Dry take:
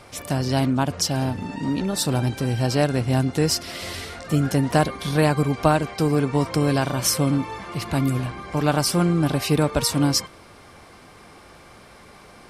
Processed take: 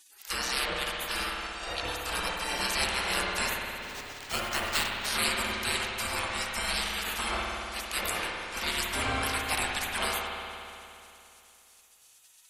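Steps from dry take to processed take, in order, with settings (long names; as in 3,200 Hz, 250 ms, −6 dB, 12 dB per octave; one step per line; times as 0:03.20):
gate on every frequency bin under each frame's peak −25 dB weak
0:03.78–0:05.06: sample-rate reduction 12,000 Hz, jitter 0%
spring reverb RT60 2.8 s, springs 57 ms, chirp 45 ms, DRR −0.5 dB
level +5.5 dB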